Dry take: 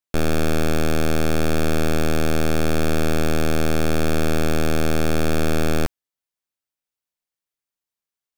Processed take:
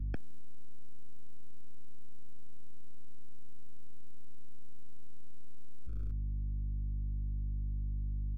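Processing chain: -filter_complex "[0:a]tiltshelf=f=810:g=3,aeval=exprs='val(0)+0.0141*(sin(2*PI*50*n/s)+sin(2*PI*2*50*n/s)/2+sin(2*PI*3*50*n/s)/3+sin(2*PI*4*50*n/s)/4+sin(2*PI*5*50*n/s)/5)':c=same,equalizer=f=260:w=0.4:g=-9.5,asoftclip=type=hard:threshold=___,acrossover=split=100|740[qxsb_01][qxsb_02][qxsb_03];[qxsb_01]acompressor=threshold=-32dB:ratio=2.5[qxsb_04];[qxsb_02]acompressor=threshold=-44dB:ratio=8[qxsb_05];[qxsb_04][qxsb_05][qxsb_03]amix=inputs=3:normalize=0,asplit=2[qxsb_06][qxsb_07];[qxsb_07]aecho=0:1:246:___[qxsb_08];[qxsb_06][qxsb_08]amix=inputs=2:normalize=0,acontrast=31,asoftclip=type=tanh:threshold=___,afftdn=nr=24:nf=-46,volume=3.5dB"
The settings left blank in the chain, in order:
-23.5dB, 0.178, -32.5dB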